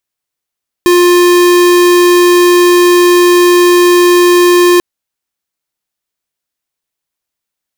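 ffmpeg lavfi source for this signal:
ffmpeg -f lavfi -i "aevalsrc='0.501*(2*lt(mod(353*t,1),0.5)-1)':duration=3.94:sample_rate=44100" out.wav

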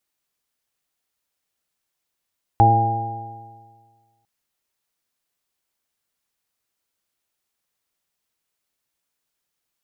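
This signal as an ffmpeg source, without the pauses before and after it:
ffmpeg -f lavfi -i "aevalsrc='0.2*pow(10,-3*t/1.67)*sin(2*PI*111.09*t)+0.0501*pow(10,-3*t/1.67)*sin(2*PI*222.75*t)+0.0708*pow(10,-3*t/1.67)*sin(2*PI*335.54*t)+0.0447*pow(10,-3*t/1.67)*sin(2*PI*450*t)+0.02*pow(10,-3*t/1.67)*sin(2*PI*566.67*t)+0.0562*pow(10,-3*t/1.67)*sin(2*PI*686.08*t)+0.316*pow(10,-3*t/1.67)*sin(2*PI*808.71*t)':duration=1.65:sample_rate=44100" out.wav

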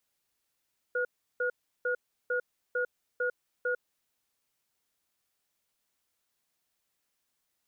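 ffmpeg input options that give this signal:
ffmpeg -f lavfi -i "aevalsrc='0.0335*(sin(2*PI*495*t)+sin(2*PI*1440*t))*clip(min(mod(t,0.45),0.1-mod(t,0.45))/0.005,0,1)':duration=2.88:sample_rate=44100" out.wav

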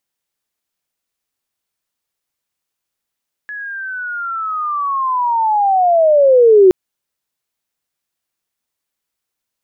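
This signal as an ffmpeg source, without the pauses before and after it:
ffmpeg -f lavfi -i "aevalsrc='pow(10,(-24.5+21*t/3.22)/20)*sin(2*PI*(1700*t-1340*t*t/(2*3.22)))':duration=3.22:sample_rate=44100" out.wav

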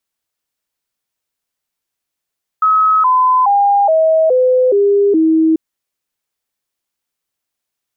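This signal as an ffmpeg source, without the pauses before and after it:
ffmpeg -f lavfi -i "aevalsrc='0.398*clip(min(mod(t,0.42),0.42-mod(t,0.42))/0.005,0,1)*sin(2*PI*1280*pow(2,-floor(t/0.42)/3)*mod(t,0.42))':duration=2.94:sample_rate=44100" out.wav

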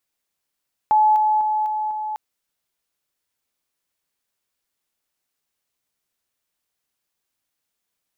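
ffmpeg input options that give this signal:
ffmpeg -f lavfi -i "aevalsrc='pow(10,(-12-3*floor(t/0.25))/20)*sin(2*PI*857*t)':duration=1.25:sample_rate=44100" out.wav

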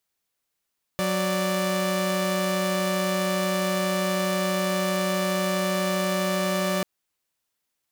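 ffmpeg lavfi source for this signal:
ffmpeg -f lavfi -i "aevalsrc='0.0708*((2*mod(185*t,1)-1)+(2*mod(587.33*t,1)-1))':duration=5.84:sample_rate=44100" out.wav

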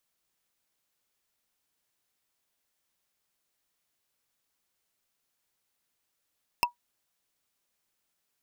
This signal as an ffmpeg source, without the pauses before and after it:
ffmpeg -f lavfi -i "aevalsrc='0.141*pow(10,-3*t/0.12)*sin(2*PI*964*t)+0.126*pow(10,-3*t/0.036)*sin(2*PI*2657.7*t)+0.112*pow(10,-3*t/0.016)*sin(2*PI*5209.5*t)+0.1*pow(10,-3*t/0.009)*sin(2*PI*8611.4*t)+0.0891*pow(10,-3*t/0.005)*sin(2*PI*12859.8*t)':duration=0.45:sample_rate=44100" out.wav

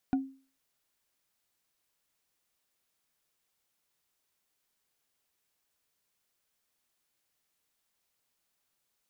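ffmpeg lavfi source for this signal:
ffmpeg -f lavfi -i "aevalsrc='0.0841*pow(10,-3*t/0.39)*sin(2*PI*268*t)+0.0299*pow(10,-3*t/0.115)*sin(2*PI*738.9*t)+0.0106*pow(10,-3*t/0.051)*sin(2*PI*1448.3*t)+0.00376*pow(10,-3*t/0.028)*sin(2*PI*2394*t)+0.00133*pow(10,-3*t/0.017)*sin(2*PI*3575.1*t)':duration=0.45:sample_rate=44100" out.wav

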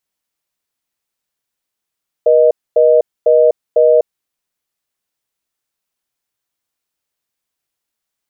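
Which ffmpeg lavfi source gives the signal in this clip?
ffmpeg -f lavfi -i "aevalsrc='0.355*(sin(2*PI*480*t)+sin(2*PI*620*t))*clip(min(mod(t,0.5),0.25-mod(t,0.5))/0.005,0,1)':duration=1.83:sample_rate=44100" out.wav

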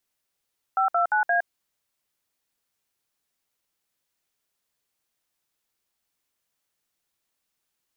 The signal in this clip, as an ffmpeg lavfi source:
ffmpeg -f lavfi -i "aevalsrc='0.0841*clip(min(mod(t,0.174),0.113-mod(t,0.174))/0.002,0,1)*(eq(floor(t/0.174),0)*(sin(2*PI*770*mod(t,0.174))+sin(2*PI*1336*mod(t,0.174)))+eq(floor(t/0.174),1)*(sin(2*PI*697*mod(t,0.174))+sin(2*PI*1336*mod(t,0.174)))+eq(floor(t/0.174),2)*(sin(2*PI*852*mod(t,0.174))+sin(2*PI*1477*mod(t,0.174)))+eq(floor(t/0.174),3)*(sin(2*PI*697*mod(t,0.174))+sin(2*PI*1633*mod(t,0.174))))':duration=0.696:sample_rate=44100" out.wav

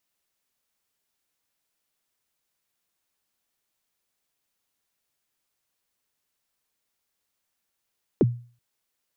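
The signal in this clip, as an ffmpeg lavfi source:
ffmpeg -f lavfi -i "aevalsrc='0.251*pow(10,-3*t/0.4)*sin(2*PI*(480*0.032/log(120/480)*(exp(log(120/480)*min(t,0.032)/0.032)-1)+120*max(t-0.032,0)))':duration=0.38:sample_rate=44100" out.wav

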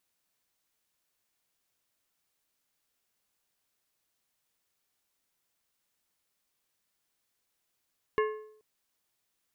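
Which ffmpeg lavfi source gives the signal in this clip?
ffmpeg -f lavfi -i "aevalsrc='0.075*pow(10,-3*t/0.65)*sin(2*PI*430*t)+0.0422*pow(10,-3*t/0.494)*sin(2*PI*1075*t)+0.0237*pow(10,-3*t/0.429)*sin(2*PI*1720*t)+0.0133*pow(10,-3*t/0.401)*sin(2*PI*2150*t)+0.0075*pow(10,-3*t/0.371)*sin(2*PI*2795*t)':duration=0.43:sample_rate=44100" out.wav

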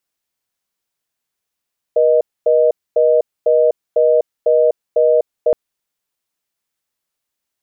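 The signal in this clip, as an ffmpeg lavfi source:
ffmpeg -f lavfi -i "aevalsrc='0.251*(sin(2*PI*480*t)+sin(2*PI*620*t))*clip(min(mod(t,0.5),0.25-mod(t,0.5))/0.005,0,1)':duration=3.57:sample_rate=44100" out.wav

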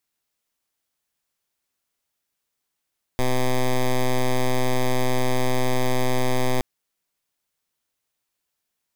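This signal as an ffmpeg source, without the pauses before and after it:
ffmpeg -f lavfi -i "aevalsrc='0.106*(2*lt(mod(127*t,1),0.09)-1)':duration=3.42:sample_rate=44100" out.wav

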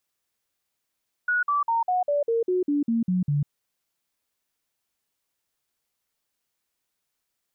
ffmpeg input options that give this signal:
ffmpeg -f lavfi -i "aevalsrc='0.1*clip(min(mod(t,0.2),0.15-mod(t,0.2))/0.005,0,1)*sin(2*PI*1460*pow(2,-floor(t/0.2)/3)*mod(t,0.2))':duration=2.2:sample_rate=44100" out.wav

